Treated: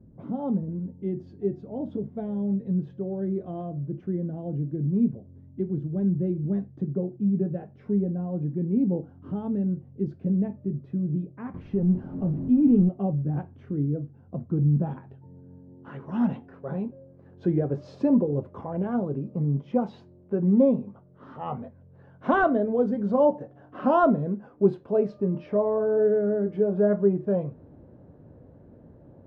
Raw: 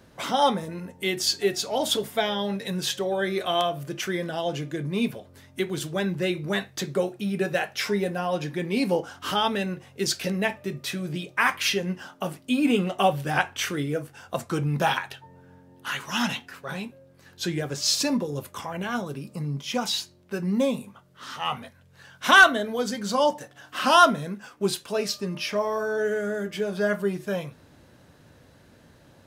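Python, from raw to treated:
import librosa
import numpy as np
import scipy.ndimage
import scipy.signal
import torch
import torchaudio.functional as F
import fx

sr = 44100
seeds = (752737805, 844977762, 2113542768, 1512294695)

y = fx.zero_step(x, sr, step_db=-27.0, at=(11.54, 12.89))
y = fx.filter_sweep_lowpass(y, sr, from_hz=230.0, to_hz=520.0, start_s=14.76, end_s=16.46, q=0.92)
y = y * librosa.db_to_amplitude(4.5)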